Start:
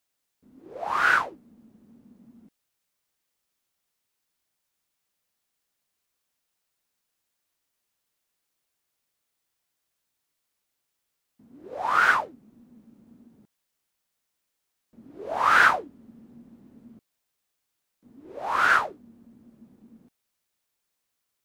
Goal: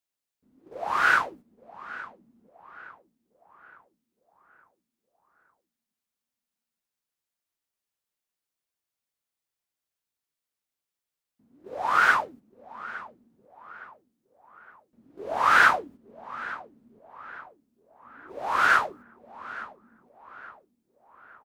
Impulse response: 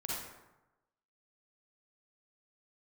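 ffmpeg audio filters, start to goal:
-filter_complex "[0:a]agate=range=-9dB:threshold=-45dB:ratio=16:detection=peak,asplit=2[link_01][link_02];[link_02]adelay=864,lowpass=frequency=2200:poles=1,volume=-16dB,asplit=2[link_03][link_04];[link_04]adelay=864,lowpass=frequency=2200:poles=1,volume=0.51,asplit=2[link_05][link_06];[link_06]adelay=864,lowpass=frequency=2200:poles=1,volume=0.51,asplit=2[link_07][link_08];[link_08]adelay=864,lowpass=frequency=2200:poles=1,volume=0.51,asplit=2[link_09][link_10];[link_10]adelay=864,lowpass=frequency=2200:poles=1,volume=0.51[link_11];[link_01][link_03][link_05][link_07][link_09][link_11]amix=inputs=6:normalize=0"

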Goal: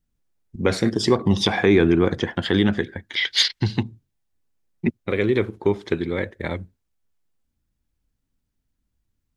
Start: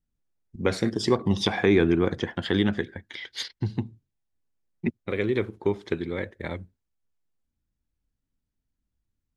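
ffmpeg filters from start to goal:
ffmpeg -i in.wav -filter_complex "[0:a]asettb=1/sr,asplit=3[link_01][link_02][link_03];[link_01]atrim=end=3.164[link_04];[link_02]atrim=start=3.16:end=3.83,asetpts=PTS-STARTPTS,afade=type=in:duration=0.004:curve=qsin,afade=type=out:start_time=0.666:duration=0.004:curve=qsin,equalizer=frequency=3400:width=0.36:gain=12[link_05];[link_03]atrim=start=3.826[link_06];[link_04][link_05]acrossfade=duration=0.004:curve1=hsin:curve2=qsin[link_07];[link_07][link_06]acrossfade=duration=0.004:curve1=qsin:curve2=hsin,asplit=2[link_08][link_09];[link_09]alimiter=limit=-15dB:level=0:latency=1:release=17,volume=-1dB[link_10];[link_08][link_10]amix=inputs=2:normalize=0" out.wav

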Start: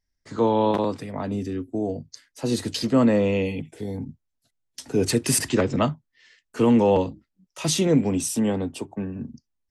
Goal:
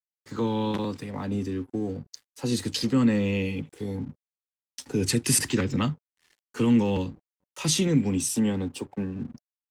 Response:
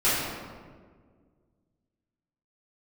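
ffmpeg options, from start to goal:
-filter_complex "[0:a]acrossover=split=300|1400|2500[link_01][link_02][link_03][link_04];[link_02]acompressor=threshold=-33dB:ratio=6[link_05];[link_01][link_05][link_03][link_04]amix=inputs=4:normalize=0,aeval=exprs='sgn(val(0))*max(abs(val(0))-0.00237,0)':channel_layout=same,asuperstop=centerf=650:order=4:qfactor=6.6"

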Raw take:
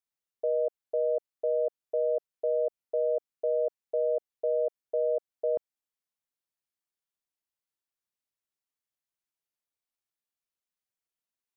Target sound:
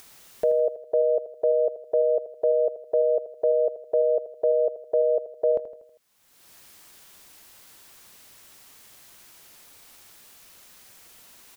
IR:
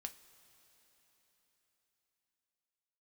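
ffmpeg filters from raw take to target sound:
-filter_complex "[0:a]acompressor=mode=upward:threshold=-32dB:ratio=2.5,asplit=2[link_01][link_02];[link_02]aecho=0:1:80|160|240|320|400:0.237|0.119|0.0593|0.0296|0.0148[link_03];[link_01][link_03]amix=inputs=2:normalize=0,volume=7dB"

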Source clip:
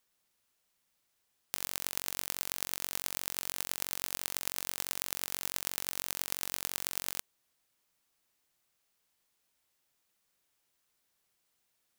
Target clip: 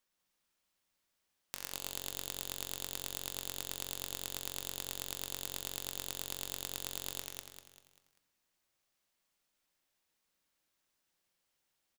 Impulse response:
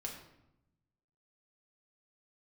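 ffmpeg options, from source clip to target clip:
-filter_complex "[0:a]aecho=1:1:196|392|588|784|980:0.708|0.29|0.119|0.0488|0.02,asplit=2[link_01][link_02];[1:a]atrim=start_sample=2205,asetrate=52920,aresample=44100,lowpass=8700[link_03];[link_02][link_03]afir=irnorm=-1:irlink=0,volume=-1.5dB[link_04];[link_01][link_04]amix=inputs=2:normalize=0,volume=-7.5dB"

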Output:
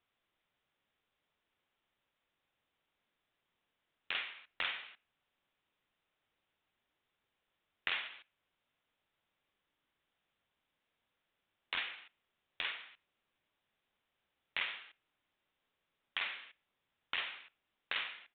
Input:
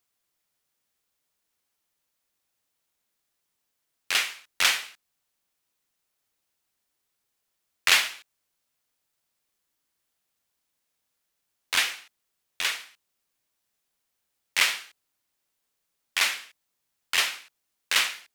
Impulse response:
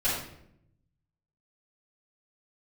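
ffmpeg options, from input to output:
-filter_complex "[0:a]acompressor=threshold=-40dB:ratio=3,asplit=2[link_01][link_02];[1:a]atrim=start_sample=2205,atrim=end_sample=6615[link_03];[link_02][link_03]afir=irnorm=-1:irlink=0,volume=-30.5dB[link_04];[link_01][link_04]amix=inputs=2:normalize=0,aresample=8000,aresample=44100,volume=1dB"

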